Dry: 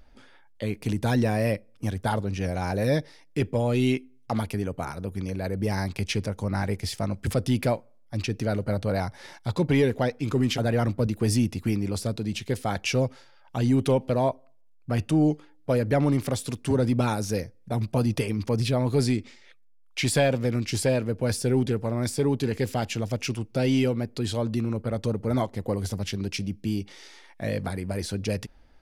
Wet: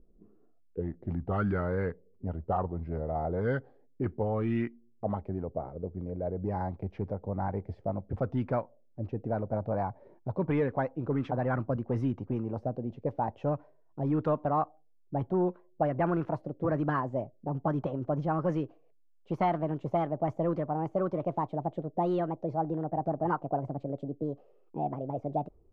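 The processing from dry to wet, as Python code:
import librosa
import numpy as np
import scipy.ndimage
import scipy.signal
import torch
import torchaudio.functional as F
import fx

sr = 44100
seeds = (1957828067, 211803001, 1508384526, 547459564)

y = fx.speed_glide(x, sr, from_pct=79, to_pct=145)
y = fx.envelope_lowpass(y, sr, base_hz=340.0, top_hz=1400.0, q=2.5, full_db=-19.0, direction='up')
y = y * 10.0 ** (-7.0 / 20.0)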